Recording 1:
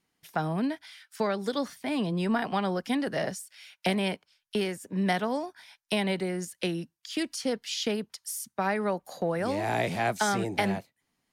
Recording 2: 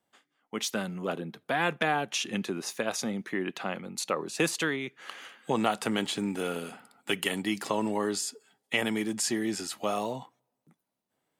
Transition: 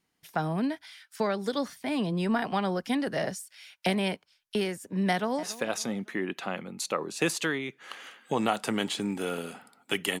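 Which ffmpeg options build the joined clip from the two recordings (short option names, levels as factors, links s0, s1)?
-filter_complex "[0:a]apad=whole_dur=10.2,atrim=end=10.2,atrim=end=5.432[s0];[1:a]atrim=start=2.608:end=7.38[s1];[s0][s1]acrossfade=d=0.004:c1=hsin:c2=hsin,asplit=2[s2][s3];[s3]afade=t=in:st=5.1:d=0.01,afade=t=out:st=5.43:d=0.01,aecho=0:1:280|560|840:0.149624|0.0598494|0.0239398[s4];[s2][s4]amix=inputs=2:normalize=0"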